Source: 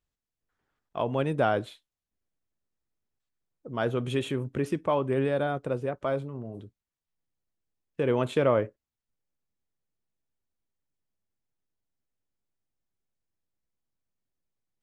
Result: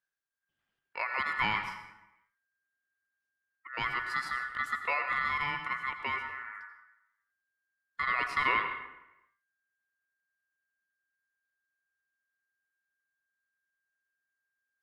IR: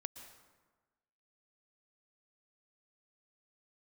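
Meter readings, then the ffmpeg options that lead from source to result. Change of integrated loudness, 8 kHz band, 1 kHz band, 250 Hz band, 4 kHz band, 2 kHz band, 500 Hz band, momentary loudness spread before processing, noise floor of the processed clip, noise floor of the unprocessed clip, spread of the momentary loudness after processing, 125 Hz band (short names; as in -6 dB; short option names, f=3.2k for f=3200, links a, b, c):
-3.0 dB, n/a, +1.0 dB, -18.5 dB, +1.5 dB, +8.5 dB, -20.5 dB, 14 LU, under -85 dBFS, under -85 dBFS, 16 LU, -19.0 dB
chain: -filter_complex "[0:a]aeval=exprs='val(0)*sin(2*PI*1600*n/s)':c=same[a];[1:a]atrim=start_sample=2205,asetrate=61740,aresample=44100[b];[a][b]afir=irnorm=-1:irlink=0,volume=4dB"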